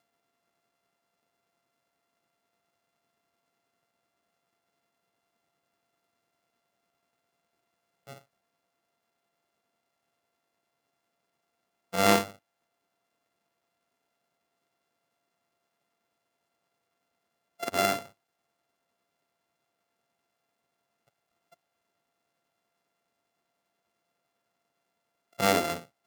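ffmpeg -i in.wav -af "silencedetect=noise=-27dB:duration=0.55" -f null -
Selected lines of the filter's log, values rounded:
silence_start: 0.00
silence_end: 11.94 | silence_duration: 11.94
silence_start: 12.24
silence_end: 17.63 | silence_duration: 5.39
silence_start: 17.99
silence_end: 25.40 | silence_duration: 7.41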